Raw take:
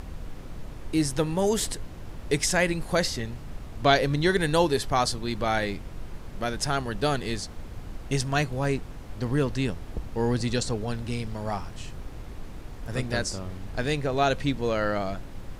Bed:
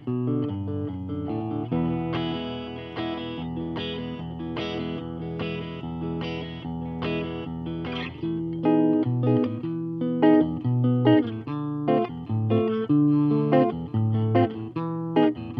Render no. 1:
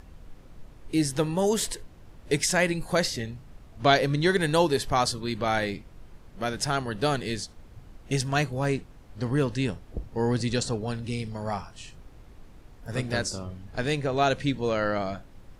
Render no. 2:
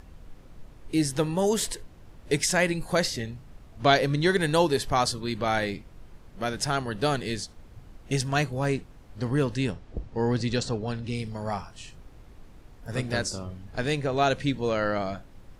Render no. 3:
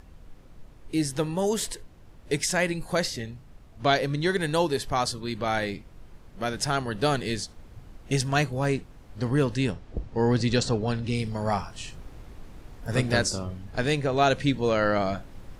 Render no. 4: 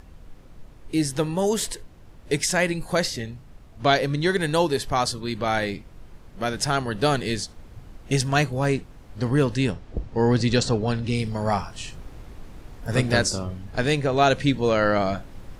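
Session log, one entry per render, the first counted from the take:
noise reduction from a noise print 10 dB
0:09.72–0:11.15: low-pass filter 6,400 Hz
speech leveller 2 s
level +3 dB

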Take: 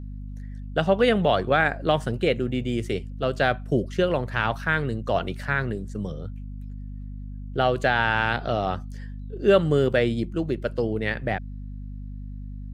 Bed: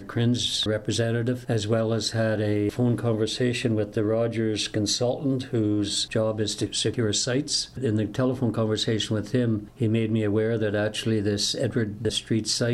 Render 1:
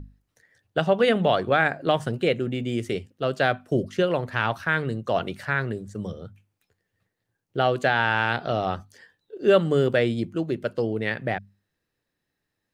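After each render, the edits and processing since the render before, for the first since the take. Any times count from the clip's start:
mains-hum notches 50/100/150/200/250 Hz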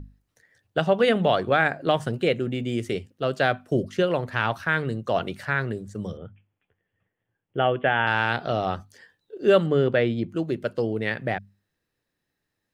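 0:06.17–0:08.07: Chebyshev low-pass filter 3,400 Hz, order 8
0:09.66–0:10.29: low-pass filter 3,500 Hz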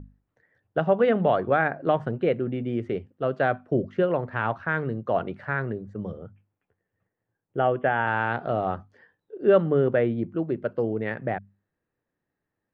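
low-pass filter 1,500 Hz 12 dB per octave
low-shelf EQ 90 Hz −5 dB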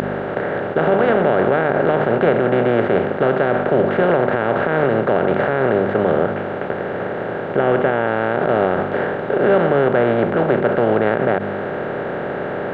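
compressor on every frequency bin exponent 0.2
brickwall limiter −5.5 dBFS, peak gain reduction 7.5 dB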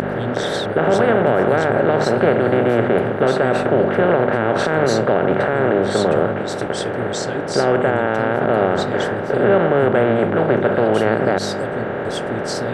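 mix in bed −4 dB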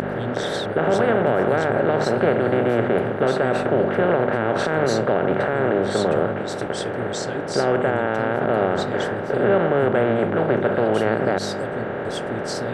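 level −3.5 dB

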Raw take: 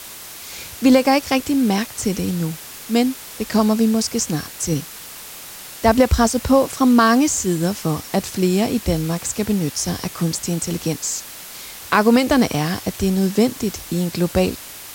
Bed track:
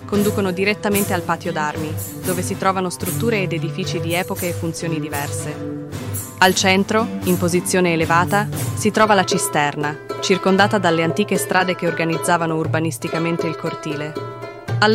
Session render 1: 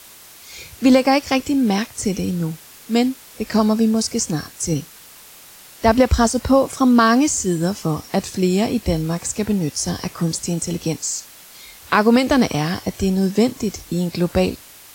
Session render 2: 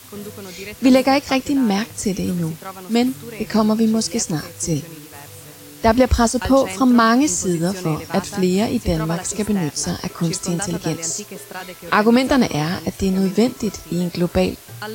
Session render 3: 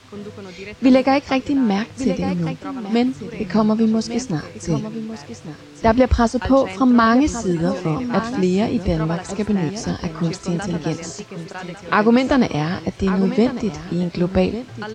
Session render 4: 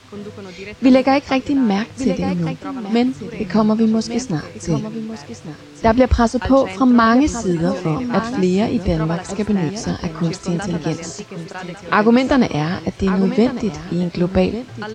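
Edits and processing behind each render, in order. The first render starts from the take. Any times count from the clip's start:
noise reduction from a noise print 7 dB
mix in bed track −16 dB
high-frequency loss of the air 140 metres; single-tap delay 1,150 ms −12 dB
level +1.5 dB; brickwall limiter −2 dBFS, peak gain reduction 1 dB

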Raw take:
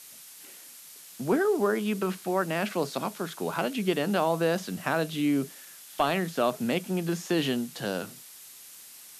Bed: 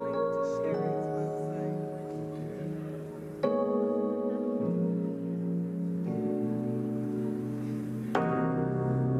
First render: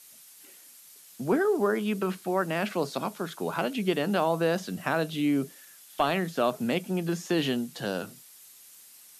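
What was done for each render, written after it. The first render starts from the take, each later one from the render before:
broadband denoise 6 dB, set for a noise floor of −49 dBFS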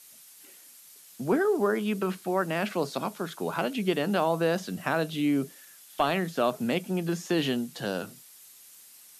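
no processing that can be heard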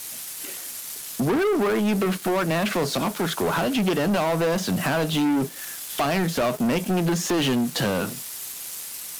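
downward compressor 2 to 1, threshold −37 dBFS, peak gain reduction 9.5 dB
leveller curve on the samples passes 5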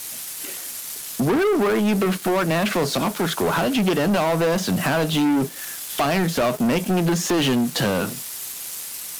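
level +2.5 dB

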